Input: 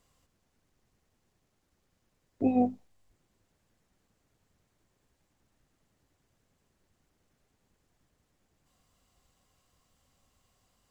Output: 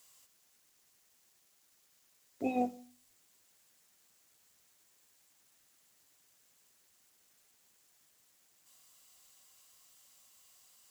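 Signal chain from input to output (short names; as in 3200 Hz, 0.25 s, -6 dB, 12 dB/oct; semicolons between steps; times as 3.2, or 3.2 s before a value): tilt +4.5 dB/oct; on a send: reverb RT60 0.50 s, pre-delay 46 ms, DRR 21.5 dB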